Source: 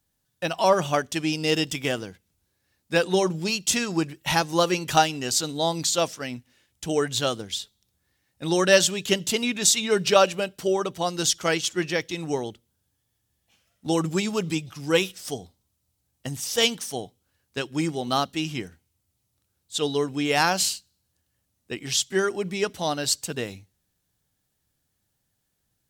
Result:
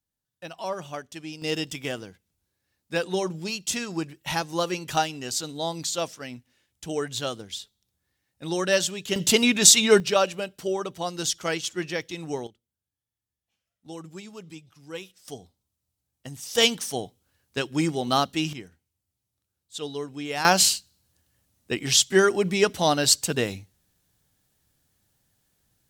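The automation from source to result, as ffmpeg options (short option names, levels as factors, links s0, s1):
-af "asetnsamples=n=441:p=0,asendcmd='1.42 volume volume -5dB;9.16 volume volume 5.5dB;10 volume volume -4dB;12.47 volume volume -16dB;15.28 volume volume -7dB;16.55 volume volume 1.5dB;18.53 volume volume -8dB;20.45 volume volume 5dB',volume=0.251"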